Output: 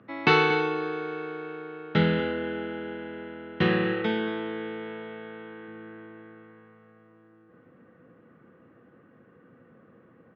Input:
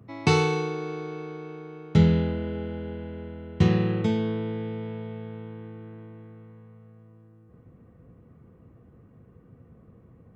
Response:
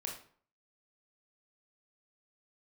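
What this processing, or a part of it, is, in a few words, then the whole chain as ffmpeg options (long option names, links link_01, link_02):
phone earpiece: -filter_complex "[0:a]asettb=1/sr,asplit=3[link_01][link_02][link_03];[link_01]atrim=end=3.944[link_04];[link_02]atrim=start=3.94:end=5.68,asetpts=PTS-STARTPTS,afade=type=in:duration=0.004:curve=qsin,afade=type=out:start_time=1.736:duration=0.004:curve=qsin,highpass=frequency=190:poles=1[link_05];[link_03]atrim=start=5.676[link_06];[link_04][link_05]acrossfade=duration=0.004:curve1=hsin:curve2=qsin[link_07];[link_07][link_06]acrossfade=duration=0.004:curve1=qsin:curve2=hsin,highpass=370,equalizer=frequency=420:width_type=q:width=4:gain=-7,equalizer=frequency=700:width_type=q:width=4:gain=-7,equalizer=frequency=1000:width_type=q:width=4:gain=-6,equalizer=frequency=1600:width_type=q:width=4:gain=6,equalizer=frequency=2300:width_type=q:width=4:gain=-4,lowpass=frequency=3300:width=0.5412,lowpass=frequency=3300:width=1.3066,asplit=2[link_08][link_09];[link_09]adelay=233.2,volume=-14dB,highshelf=frequency=4000:gain=-5.25[link_10];[link_08][link_10]amix=inputs=2:normalize=0,volume=8dB"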